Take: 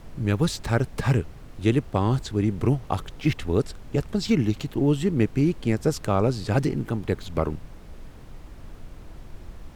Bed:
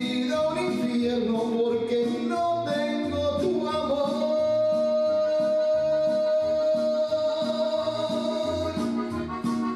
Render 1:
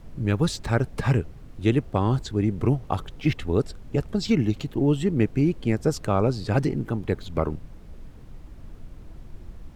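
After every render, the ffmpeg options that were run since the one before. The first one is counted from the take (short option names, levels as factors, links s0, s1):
-af "afftdn=nr=6:nf=-44"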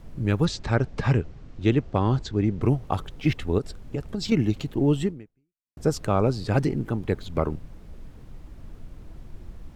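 -filter_complex "[0:a]asettb=1/sr,asplit=3[s0][s1][s2];[s0]atrim=end=0.454[s3];[s1]atrim=start=0.45:end=2.62,asetpts=PTS-STARTPTS,afade=t=in:d=0.004:c=qsin,afade=t=out:st=2.166:d=0.004:c=qsin,lowpass=f=6800:w=0.5412,lowpass=f=6800:w=1.3066[s4];[s2]atrim=start=2.616[s5];[s3][s4]acrossfade=d=0.004:c1=hsin:c2=qsin[s6];[s6][s5]acrossfade=d=0.004:c1=qsin:c2=hsin,asettb=1/sr,asplit=3[s7][s8][s9];[s7]atrim=end=3.584[s10];[s8]atrim=start=3.58:end=4.32,asetpts=PTS-STARTPTS,afade=t=in:d=0.004:c=qsin,afade=t=out:st=0.736:d=0.004:c=qsin,acompressor=threshold=0.0631:ratio=6:attack=3.2:release=140:knee=1:detection=peak[s11];[s9]atrim=start=4.316[s12];[s10][s11]acrossfade=d=0.004:c1=hsin:c2=qsin[s13];[s13][s12]acrossfade=d=0.004:c1=qsin:c2=hsin,asplit=2[s14][s15];[s14]atrim=end=5.77,asetpts=PTS-STARTPTS,afade=t=out:st=5.05:d=0.72:c=exp[s16];[s15]atrim=start=5.77,asetpts=PTS-STARTPTS,afade=t=in:d=0.004:c=hsin[s17];[s16][s17]concat=n=2:v=0:a=1"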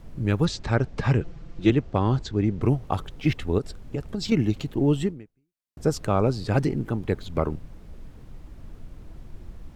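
-filter_complex "[0:a]asettb=1/sr,asplit=3[s0][s1][s2];[s0]atrim=end=1.204[s3];[s1]atrim=start=1.2:end=1.7,asetpts=PTS-STARTPTS,afade=t=in:d=0.004:c=qsin,afade=t=out:st=0.496:d=0.004:c=qsin,aecho=1:1:5.9:0.82,atrim=end_sample=22050[s4];[s2]atrim=start=1.696[s5];[s3][s4]acrossfade=d=0.004:c1=hsin:c2=qsin[s6];[s6][s5]acrossfade=d=0.004:c1=qsin:c2=hsin"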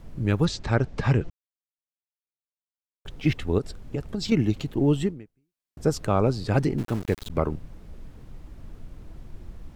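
-filter_complex "[0:a]asettb=1/sr,asplit=3[s0][s1][s2];[s0]atrim=end=6.784[s3];[s1]atrim=start=6.78:end=7.3,asetpts=PTS-STARTPTS,afade=t=in:d=0.004:c=qsin,afade=t=out:st=0.516:d=0.004:c=qsin,aeval=exprs='val(0)*gte(abs(val(0)),0.02)':c=same[s4];[s2]atrim=start=7.296[s5];[s3][s4]acrossfade=d=0.004:c1=hsin:c2=qsin[s6];[s6][s5]acrossfade=d=0.004:c1=qsin:c2=hsin,asplit=3[s7][s8][s9];[s7]atrim=end=1.3,asetpts=PTS-STARTPTS,afade=t=out:st=1.296:d=0.004:c=hsin[s10];[s8]atrim=start=1.3:end=3.05,asetpts=PTS-STARTPTS,volume=0[s11];[s9]atrim=start=3.05,asetpts=PTS-STARTPTS,afade=t=in:d=0.004:c=hsin[s12];[s10][s11][s12]concat=n=3:v=0:a=1"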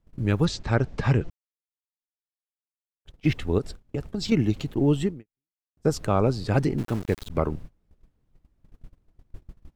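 -af "agate=range=0.0562:threshold=0.0178:ratio=16:detection=peak"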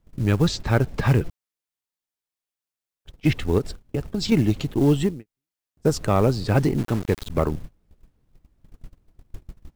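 -filter_complex "[0:a]asplit=2[s0][s1];[s1]asoftclip=type=tanh:threshold=0.106,volume=0.631[s2];[s0][s2]amix=inputs=2:normalize=0,acrusher=bits=7:mode=log:mix=0:aa=0.000001"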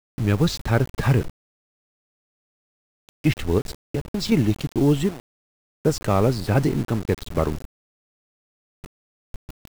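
-af "aeval=exprs='val(0)*gte(abs(val(0)),0.0266)':c=same"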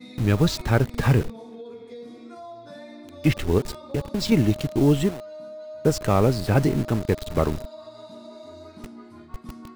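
-filter_complex "[1:a]volume=0.168[s0];[0:a][s0]amix=inputs=2:normalize=0"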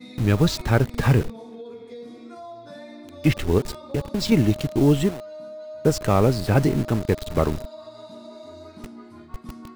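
-af "volume=1.12"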